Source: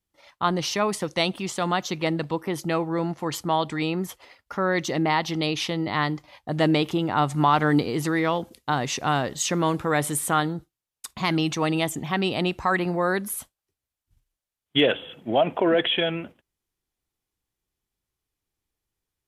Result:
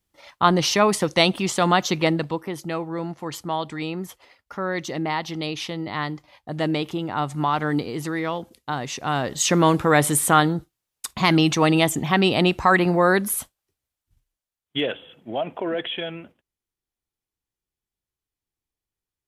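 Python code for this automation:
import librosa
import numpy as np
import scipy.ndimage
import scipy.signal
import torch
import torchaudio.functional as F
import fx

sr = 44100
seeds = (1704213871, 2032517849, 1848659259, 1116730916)

y = fx.gain(x, sr, db=fx.line((1.99, 6.0), (2.55, -3.0), (9.0, -3.0), (9.52, 6.0), (13.37, 6.0), (14.96, -6.0)))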